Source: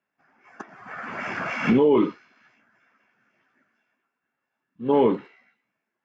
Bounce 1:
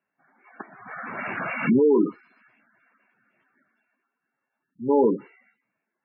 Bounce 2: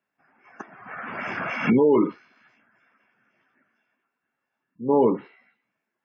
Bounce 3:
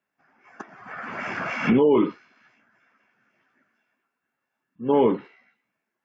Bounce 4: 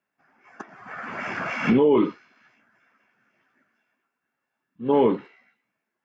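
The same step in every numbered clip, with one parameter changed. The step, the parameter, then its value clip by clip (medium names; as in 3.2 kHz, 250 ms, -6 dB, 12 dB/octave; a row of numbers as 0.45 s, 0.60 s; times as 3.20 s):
spectral gate, under each frame's peak: -15 dB, -30 dB, -45 dB, -60 dB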